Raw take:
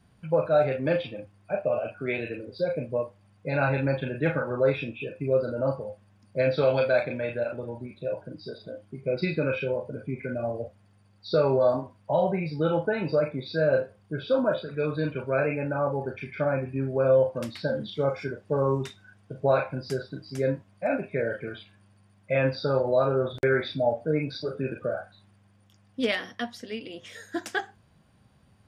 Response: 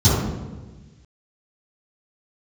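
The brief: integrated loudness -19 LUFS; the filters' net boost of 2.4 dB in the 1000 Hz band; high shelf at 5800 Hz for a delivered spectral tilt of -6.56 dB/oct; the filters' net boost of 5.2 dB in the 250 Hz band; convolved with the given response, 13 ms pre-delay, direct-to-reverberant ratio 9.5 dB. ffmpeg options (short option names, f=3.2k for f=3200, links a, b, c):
-filter_complex "[0:a]equalizer=f=250:t=o:g=6.5,equalizer=f=1k:t=o:g=3,highshelf=f=5.8k:g=-3.5,asplit=2[a][b];[1:a]atrim=start_sample=2205,adelay=13[c];[b][c]afir=irnorm=-1:irlink=0,volume=-30dB[d];[a][d]amix=inputs=2:normalize=0,volume=3.5dB"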